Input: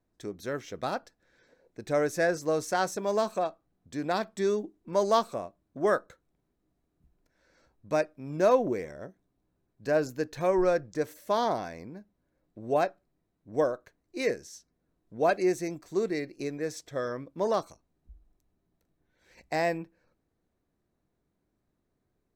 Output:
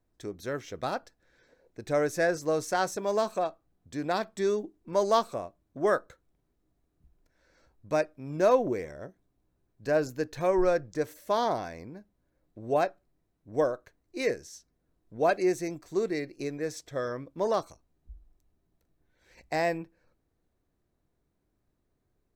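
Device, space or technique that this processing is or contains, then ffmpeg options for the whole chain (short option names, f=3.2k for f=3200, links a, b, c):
low shelf boost with a cut just above: -af "lowshelf=f=88:g=6,equalizer=f=200:t=o:w=0.67:g=-3"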